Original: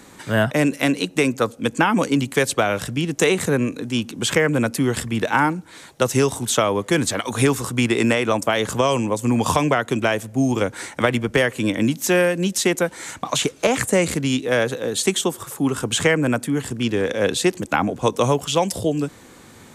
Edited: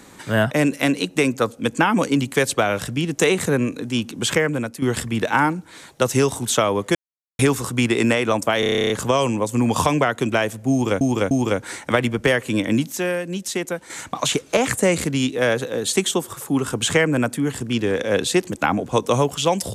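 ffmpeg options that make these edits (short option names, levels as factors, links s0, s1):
-filter_complex "[0:a]asplit=18[s0][s1][s2][s3][s4][s5][s6][s7][s8][s9][s10][s11][s12][s13][s14][s15][s16][s17];[s0]atrim=end=4.82,asetpts=PTS-STARTPTS,afade=t=out:st=4.31:d=0.51:silence=0.237137[s18];[s1]atrim=start=4.82:end=6.95,asetpts=PTS-STARTPTS,afade=t=in:d=0.004:c=hsin:silence=0.237137,afade=t=out:st=2.126:d=0.004:c=hsin[s19];[s2]atrim=start=6.95:end=7.39,asetpts=PTS-STARTPTS,volume=0[s20];[s3]atrim=start=7.39:end=8.632,asetpts=PTS-STARTPTS,afade=t=in:d=0.004:c=hsin[s21];[s4]atrim=start=8.598:end=8.632[s22];[s5]atrim=start=8.598:end=8.632[s23];[s6]atrim=start=8.598:end=8.632[s24];[s7]atrim=start=8.598:end=8.632[s25];[s8]atrim=start=8.598:end=8.632[s26];[s9]atrim=start=8.598:end=8.632[s27];[s10]atrim=start=8.598:end=8.632[s28];[s11]atrim=start=8.598:end=8.632[s29];[s12]atrim=start=8.598:end=8.632[s30];[s13]atrim=start=8.598:end=10.712[s31];[s14]atrim=start=10.408:end=10.712[s32];[s15]atrim=start=10.408:end=12.022[s33];[s16]atrim=start=12.018:end=13.002,asetpts=PTS-STARTPTS,volume=0.501[s34];[s17]atrim=start=12.998[s35];[s18][s19][s20][s21]concat=n=4:v=0:a=1[s36];[s36][s22]acrossfade=d=0.004:c1=hsin:c2=hsin[s37];[s37][s23]acrossfade=d=0.004:c1=hsin:c2=hsin[s38];[s38][s24]acrossfade=d=0.004:c1=hsin:c2=hsin[s39];[s39][s25]acrossfade=d=0.004:c1=hsin:c2=hsin[s40];[s40][s26]acrossfade=d=0.004:c1=hsin:c2=hsin[s41];[s41][s27]acrossfade=d=0.004:c1=hsin:c2=hsin[s42];[s42][s28]acrossfade=d=0.004:c1=hsin:c2=hsin[s43];[s43][s29]acrossfade=d=0.004:c1=hsin:c2=hsin[s44];[s44][s30]acrossfade=d=0.004:c1=hsin:c2=hsin[s45];[s45][s31]acrossfade=d=0.004:c1=hsin:c2=hsin[s46];[s46][s32]acrossfade=d=0.004:c1=hsin:c2=hsin[s47];[s47][s33]acrossfade=d=0.004:c1=hsin:c2=hsin[s48];[s48][s34]acrossfade=d=0.004:c1=hsin:c2=hsin[s49];[s49][s35]acrossfade=d=0.004:c1=hsin:c2=hsin"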